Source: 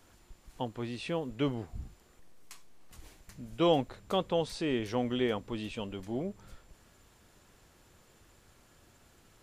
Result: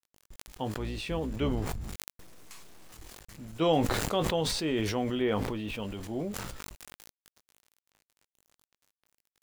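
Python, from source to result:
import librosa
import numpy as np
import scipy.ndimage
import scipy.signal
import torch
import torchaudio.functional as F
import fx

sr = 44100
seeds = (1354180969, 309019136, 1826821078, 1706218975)

y = fx.octave_divider(x, sr, octaves=2, level_db=-2.0, at=(0.75, 1.8))
y = fx.lowpass(y, sr, hz=3200.0, slope=12, at=(5.15, 5.82))
y = np.where(np.abs(y) >= 10.0 ** (-51.5 / 20.0), y, 0.0)
y = fx.doubler(y, sr, ms=19.0, db=-10.0)
y = fx.sustainer(y, sr, db_per_s=27.0)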